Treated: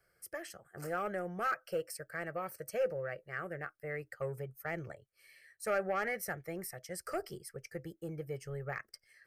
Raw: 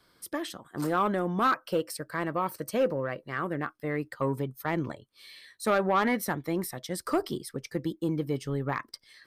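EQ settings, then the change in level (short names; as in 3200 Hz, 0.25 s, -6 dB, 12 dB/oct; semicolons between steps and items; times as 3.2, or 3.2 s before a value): dynamic EQ 4500 Hz, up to +6 dB, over -48 dBFS, Q 0.79; fixed phaser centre 1000 Hz, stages 6; -6.0 dB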